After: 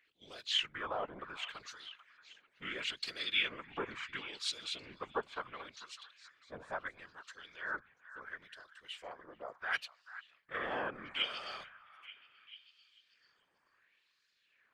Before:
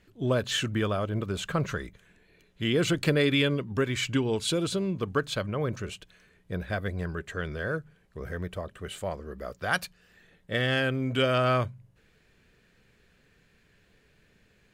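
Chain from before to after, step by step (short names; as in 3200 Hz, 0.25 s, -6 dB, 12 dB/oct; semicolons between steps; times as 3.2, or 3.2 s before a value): harmoniser -7 st -10 dB; LFO band-pass sine 0.72 Hz 860–4800 Hz; whisperiser; on a send: delay with a stepping band-pass 0.44 s, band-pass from 1300 Hz, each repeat 0.7 oct, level -12 dB; on the sum: gain -1.5 dB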